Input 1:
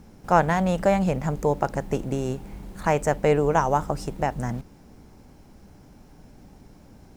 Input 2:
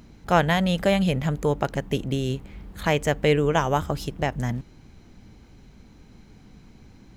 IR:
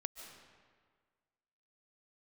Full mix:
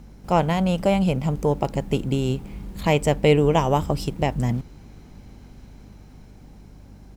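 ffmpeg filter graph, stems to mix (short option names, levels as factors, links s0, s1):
-filter_complex "[0:a]aeval=exprs='val(0)+0.00631*(sin(2*PI*50*n/s)+sin(2*PI*2*50*n/s)/2+sin(2*PI*3*50*n/s)/3+sin(2*PI*4*50*n/s)/4+sin(2*PI*5*50*n/s)/5)':c=same,volume=0.841[s0];[1:a]dynaudnorm=f=280:g=11:m=3.76,adelay=0.3,volume=0.473[s1];[s0][s1]amix=inputs=2:normalize=0"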